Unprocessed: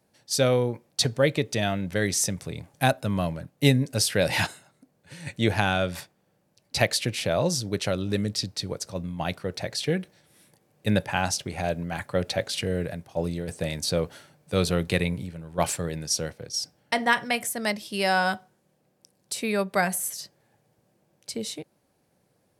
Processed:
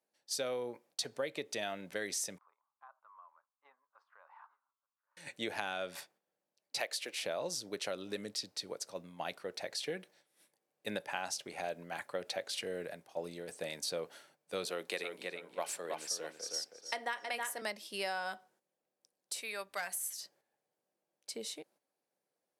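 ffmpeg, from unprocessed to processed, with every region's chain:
ffmpeg -i in.wav -filter_complex "[0:a]asettb=1/sr,asplit=3[link_01][link_02][link_03];[link_01]atrim=end=2.384[link_04];[link_02]atrim=start=2.38:end=5.17,asetpts=PTS-STARTPTS,afade=type=in:duration=0.004:curve=qsin,afade=type=out:start_time=2.786:duration=0.004:curve=qsin,asuperpass=centerf=1100:order=4:qfactor=3.6,acompressor=threshold=-53dB:ratio=2:attack=3.2:release=140:knee=1:detection=peak,aecho=1:1:879:0.0794,atrim=end_sample=123039[link_05];[link_03]atrim=start=5.166[link_06];[link_04][link_05]acrossfade=duration=0.004:curve1=hsin:curve2=qsin[link_07];[link_07][link_06]acrossfade=duration=0.004:curve1=qsin:curve2=hsin,asettb=1/sr,asplit=3[link_08][link_09][link_10];[link_08]atrim=end=6.804[link_11];[link_09]atrim=start=6.8:end=7.23,asetpts=PTS-STARTPTS,afade=type=in:duration=0.004:curve=qsin,afade=type=out:start_time=0.426:duration=0.004:curve=qsin,highpass=380,acrusher=bits=9:mode=log:mix=0:aa=0.000001[link_12];[link_10]atrim=start=7.226[link_13];[link_11][link_12]acrossfade=duration=0.004:curve1=hsin:curve2=qsin[link_14];[link_14][link_13]acrossfade=duration=0.004:curve1=qsin:curve2=hsin,asettb=1/sr,asplit=3[link_15][link_16][link_17];[link_15]atrim=end=14.654[link_18];[link_16]atrim=start=14.65:end=17.62,asetpts=PTS-STARTPTS,afade=type=in:duration=0.004:curve=qsin,afade=type=out:start_time=2.966:duration=0.004:curve=qsin,highpass=280,asplit=2[link_19][link_20];[link_20]adelay=320,lowpass=frequency=4500:poles=1,volume=-6dB,asplit=2[link_21][link_22];[link_22]adelay=320,lowpass=frequency=4500:poles=1,volume=0.24,asplit=2[link_23][link_24];[link_24]adelay=320,lowpass=frequency=4500:poles=1,volume=0.24[link_25];[link_19][link_21][link_23][link_25]amix=inputs=4:normalize=0,atrim=end_sample=130977[link_26];[link_17]atrim=start=17.616[link_27];[link_18][link_26]acrossfade=duration=0.004:curve1=hsin:curve2=qsin[link_28];[link_28][link_27]acrossfade=duration=0.004:curve1=qsin:curve2=hsin,asettb=1/sr,asplit=3[link_29][link_30][link_31];[link_29]atrim=end=19.414[link_32];[link_30]atrim=start=19.41:end=20.21,asetpts=PTS-STARTPTS,afade=type=in:duration=0.004:curve=qsin,afade=type=out:start_time=0.796:duration=0.004:curve=qsin,equalizer=frequency=230:width=0.35:gain=-13.5,asoftclip=type=hard:threshold=-21dB,aeval=exprs='val(0)+0.00126*(sin(2*PI*60*n/s)+sin(2*PI*2*60*n/s)/2+sin(2*PI*3*60*n/s)/3+sin(2*PI*4*60*n/s)/4+sin(2*PI*5*60*n/s)/5)':channel_layout=same[link_33];[link_31]atrim=start=20.206[link_34];[link_32][link_33]acrossfade=duration=0.004:curve1=hsin:curve2=qsin[link_35];[link_35][link_34]acrossfade=duration=0.004:curve1=qsin:curve2=hsin,highpass=370,agate=range=-9dB:threshold=-58dB:ratio=16:detection=peak,acompressor=threshold=-26dB:ratio=6,volume=-7.5dB" out.wav

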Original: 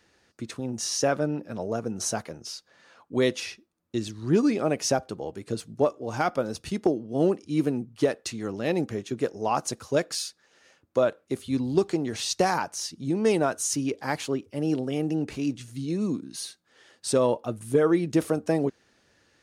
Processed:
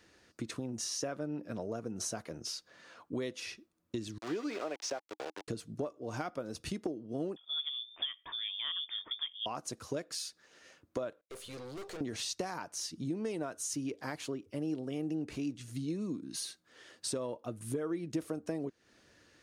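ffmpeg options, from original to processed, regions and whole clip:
ffmpeg -i in.wav -filter_complex "[0:a]asettb=1/sr,asplit=3[link_01][link_02][link_03];[link_01]atrim=end=4.184[link_04];[link_02]atrim=start=4.18:end=5.48,asetpts=PTS-STARTPTS,afade=type=in:duration=0.004:curve=qsin,afade=type=out:start_time=1.296:duration=0.004:curve=qsin,aeval=exprs='val(0)*gte(abs(val(0)),0.0251)':channel_layout=same,acrossover=split=360 7100:gain=0.0891 1 0.126[link_05][link_06][link_07];[link_05][link_06][link_07]amix=inputs=3:normalize=0[link_08];[link_03]atrim=start=5.476[link_09];[link_04][link_08]acrossfade=duration=0.004:curve1=hsin:curve2=qsin[link_10];[link_10][link_09]acrossfade=duration=0.004:curve1=qsin:curve2=hsin,asettb=1/sr,asplit=3[link_11][link_12][link_13];[link_11]atrim=end=7.364[link_14];[link_12]atrim=start=7.36:end=9.46,asetpts=PTS-STARTPTS,afade=type=in:duration=0.004:curve=qsin,afade=type=out:start_time=2.096:duration=0.004:curve=qsin,lowpass=frequency=3100:width_type=q:width=0.5098,lowpass=frequency=3100:width_type=q:width=0.6013,lowpass=frequency=3100:width_type=q:width=0.9,lowpass=frequency=3100:width_type=q:width=2.563,afreqshift=-3700,equalizer=frequency=130:width=3.6:gain=-5[link_15];[link_13]atrim=start=9.456[link_16];[link_14][link_15]acrossfade=duration=0.004:curve1=hsin:curve2=qsin[link_17];[link_17][link_16]acrossfade=duration=0.004:curve1=qsin:curve2=hsin,asettb=1/sr,asplit=3[link_18][link_19][link_20];[link_18]atrim=end=11.214[link_21];[link_19]atrim=start=11.21:end=12.01,asetpts=PTS-STARTPTS,afade=type=in:duration=0.004:curve=qsin,afade=type=out:start_time=0.796:duration=0.004:curve=qsin,lowshelf=frequency=370:width_type=q:width=3:gain=-10.5,aeval=exprs='(tanh(126*val(0)+0.4)-tanh(0.4))/126':channel_layout=same,agate=range=-33dB:threshold=-54dB:ratio=3:release=100:detection=peak[link_22];[link_20]atrim=start=12.006[link_23];[link_21][link_22]acrossfade=duration=0.004:curve1=hsin:curve2=qsin[link_24];[link_24][link_23]acrossfade=duration=0.004:curve1=qsin:curve2=hsin,acompressor=threshold=-36dB:ratio=5,equalizer=frequency=310:width=6.9:gain=4,bandreject=frequency=830:width=12" out.wav

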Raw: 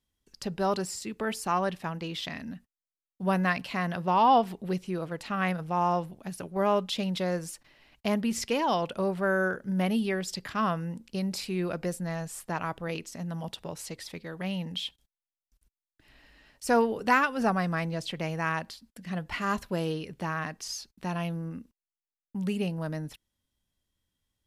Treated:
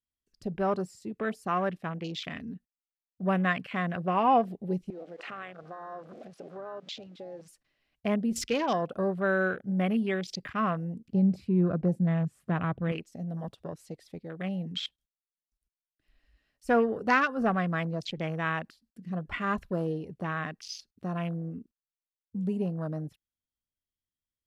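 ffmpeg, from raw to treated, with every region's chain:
ffmpeg -i in.wav -filter_complex "[0:a]asettb=1/sr,asplit=3[link_01][link_02][link_03];[link_01]atrim=end=4.904[link_04];[link_02]atrim=start=4.9:end=7.48,asetpts=PTS-STARTPTS,afade=type=in:duration=0.004:curve=qsin,afade=type=out:start_time=2.576:duration=0.004:curve=qsin,aeval=exprs='val(0)+0.5*0.0188*sgn(val(0))':channel_layout=same,acompressor=threshold=-33dB:ratio=12:attack=3.2:release=140:knee=1:detection=peak,highpass=380,lowpass=5100[link_05];[link_03]atrim=start=7.476[link_06];[link_04][link_05]acrossfade=duration=0.004:curve1=hsin:curve2=qsin[link_07];[link_07][link_06]acrossfade=duration=0.004:curve1=qsin:curve2=hsin,asettb=1/sr,asplit=3[link_08][link_09][link_10];[link_08]atrim=end=11.084[link_11];[link_09]atrim=start=11.08:end=12.92,asetpts=PTS-STARTPTS,afade=type=in:duration=0.004:curve=qsin,afade=type=out:start_time=1.836:duration=0.004:curve=qsin,highpass=86,bass=frequency=250:gain=11,treble=frequency=4000:gain=-10,acompressor=mode=upward:threshold=-43dB:ratio=2.5:attack=3.2:release=140:knee=2.83:detection=peak[link_12];[link_10]atrim=start=12.916[link_13];[link_11][link_12]acrossfade=duration=0.004:curve1=hsin:curve2=qsin[link_14];[link_14][link_13]acrossfade=duration=0.004:curve1=qsin:curve2=hsin,afwtdn=0.0112,bandreject=frequency=900:width=5.6" out.wav

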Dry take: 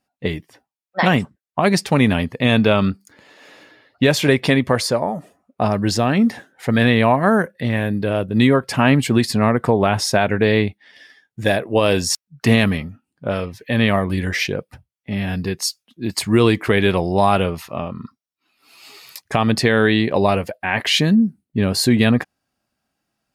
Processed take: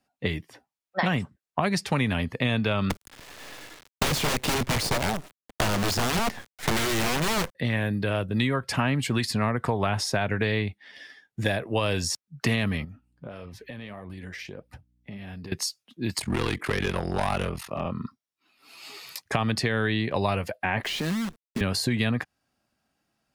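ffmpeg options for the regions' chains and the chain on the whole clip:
ffmpeg -i in.wav -filter_complex "[0:a]asettb=1/sr,asplit=3[link_01][link_02][link_03];[link_01]atrim=end=2.904[link_04];[link_02]atrim=start=2.9:end=7.55,asetpts=PTS-STARTPTS,afade=type=in:duration=0.004:curve=qsin,afade=type=out:start_time=4.646:duration=0.004:curve=qsin,acontrast=33,acrusher=bits=4:dc=4:mix=0:aa=0.000001,aeval=exprs='(mod(3.16*val(0)+1,2)-1)/3.16':channel_layout=same[link_05];[link_03]atrim=start=7.546[link_06];[link_04][link_05]acrossfade=duration=0.004:curve1=hsin:curve2=qsin[link_07];[link_07][link_06]acrossfade=duration=0.004:curve1=qsin:curve2=hsin,asettb=1/sr,asplit=3[link_08][link_09][link_10];[link_08]atrim=end=12.844[link_11];[link_09]atrim=start=12.84:end=15.52,asetpts=PTS-STARTPTS,afade=type=in:duration=0.004:curve=qsin,afade=type=out:start_time=2.676:duration=0.004:curve=qsin,flanger=delay=0.4:depth=7.8:regen=71:speed=1.6:shape=triangular,acompressor=threshold=-35dB:ratio=12:attack=3.2:release=140:knee=1:detection=peak,aeval=exprs='val(0)+0.000447*(sin(2*PI*60*n/s)+sin(2*PI*2*60*n/s)/2+sin(2*PI*3*60*n/s)/3+sin(2*PI*4*60*n/s)/4+sin(2*PI*5*60*n/s)/5)':channel_layout=same[link_12];[link_10]atrim=start=15.516[link_13];[link_11][link_12]acrossfade=duration=0.004:curve1=hsin:curve2=qsin[link_14];[link_14][link_13]acrossfade=duration=0.004:curve1=qsin:curve2=hsin,asettb=1/sr,asplit=3[link_15][link_16][link_17];[link_15]atrim=end=16.184[link_18];[link_16]atrim=start=16.18:end=17.85,asetpts=PTS-STARTPTS,afade=type=in:duration=0.004:curve=qsin,afade=type=out:start_time=1.666:duration=0.004:curve=qsin,equalizer=frequency=9500:width_type=o:width=0.27:gain=5.5,asoftclip=type=hard:threshold=-12.5dB,aeval=exprs='val(0)*sin(2*PI*22*n/s)':channel_layout=same[link_19];[link_17]atrim=start=17.846[link_20];[link_18][link_19]acrossfade=duration=0.004:curve1=hsin:curve2=qsin[link_21];[link_21][link_20]acrossfade=duration=0.004:curve1=qsin:curve2=hsin,asettb=1/sr,asplit=3[link_22][link_23][link_24];[link_22]atrim=end=20.834[link_25];[link_23]atrim=start=20.83:end=21.61,asetpts=PTS-STARTPTS,afade=type=in:duration=0.004:curve=qsin,afade=type=out:start_time=0.776:duration=0.004:curve=qsin,highpass=frequency=160:width=0.5412,highpass=frequency=160:width=1.3066,acompressor=threshold=-21dB:ratio=10:attack=3.2:release=140:knee=1:detection=peak,acrusher=bits=6:dc=4:mix=0:aa=0.000001[link_26];[link_24]atrim=start=21.606[link_27];[link_25][link_26]acrossfade=duration=0.004:curve1=hsin:curve2=qsin[link_28];[link_28][link_27]acrossfade=duration=0.004:curve1=qsin:curve2=hsin,highshelf=frequency=11000:gain=-5,acrossover=split=130|940[link_29][link_30][link_31];[link_29]acompressor=threshold=-30dB:ratio=4[link_32];[link_30]acompressor=threshold=-29dB:ratio=4[link_33];[link_31]acompressor=threshold=-28dB:ratio=4[link_34];[link_32][link_33][link_34]amix=inputs=3:normalize=0" out.wav

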